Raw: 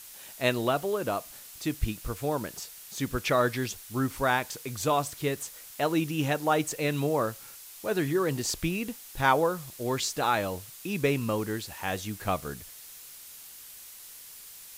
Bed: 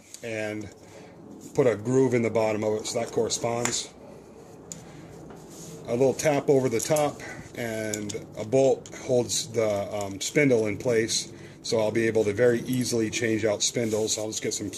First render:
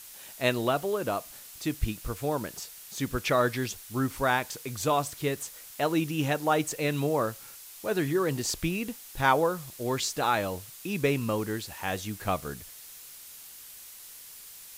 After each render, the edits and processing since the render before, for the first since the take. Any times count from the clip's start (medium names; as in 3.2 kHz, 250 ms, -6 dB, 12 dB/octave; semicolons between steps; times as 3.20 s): no audible change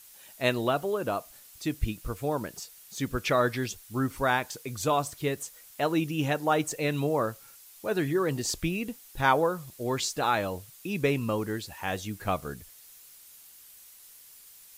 noise reduction 7 dB, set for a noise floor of -47 dBFS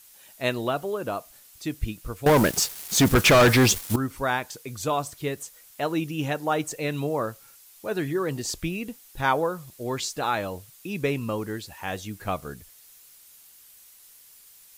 2.26–3.96 s: waveshaping leveller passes 5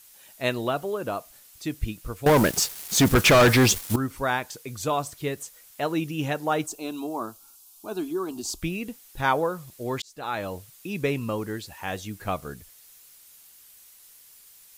6.66–8.62 s: static phaser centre 510 Hz, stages 6; 10.02–10.51 s: fade in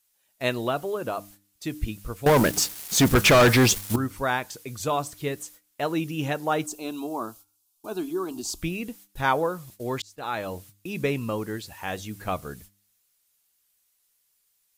gate -47 dBFS, range -18 dB; de-hum 100.6 Hz, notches 3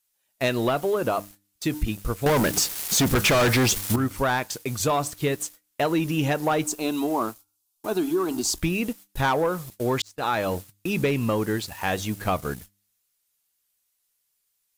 waveshaping leveller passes 2; compression 4:1, threshold -20 dBFS, peak gain reduction 7 dB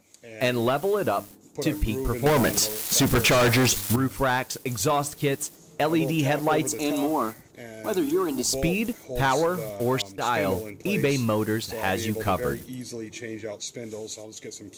add bed -10 dB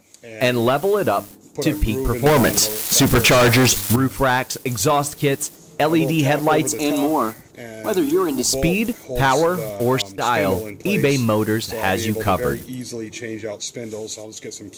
trim +6 dB